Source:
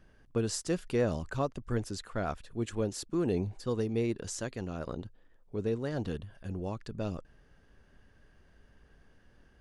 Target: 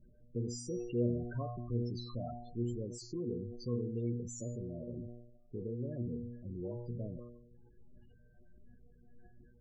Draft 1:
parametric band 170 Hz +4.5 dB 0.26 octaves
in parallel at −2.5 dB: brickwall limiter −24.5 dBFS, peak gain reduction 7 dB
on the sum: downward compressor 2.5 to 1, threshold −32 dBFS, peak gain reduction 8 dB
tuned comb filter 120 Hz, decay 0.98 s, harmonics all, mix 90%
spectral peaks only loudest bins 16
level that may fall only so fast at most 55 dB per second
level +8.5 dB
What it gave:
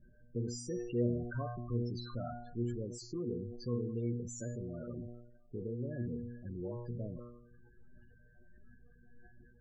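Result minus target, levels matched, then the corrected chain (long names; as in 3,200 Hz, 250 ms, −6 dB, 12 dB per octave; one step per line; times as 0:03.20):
2,000 Hz band +7.0 dB
parametric band 170 Hz +4.5 dB 0.26 octaves
in parallel at −2.5 dB: brickwall limiter −24.5 dBFS, peak gain reduction 7 dB
on the sum: downward compressor 2.5 to 1, threshold −32 dBFS, peak gain reduction 8 dB
parametric band 1,500 Hz −6.5 dB 0.77 octaves
tuned comb filter 120 Hz, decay 0.98 s, harmonics all, mix 90%
spectral peaks only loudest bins 16
level that may fall only so fast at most 55 dB per second
level +8.5 dB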